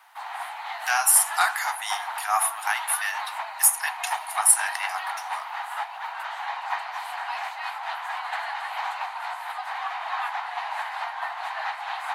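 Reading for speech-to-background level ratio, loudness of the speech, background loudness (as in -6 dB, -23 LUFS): 9.5 dB, -22.5 LUFS, -32.0 LUFS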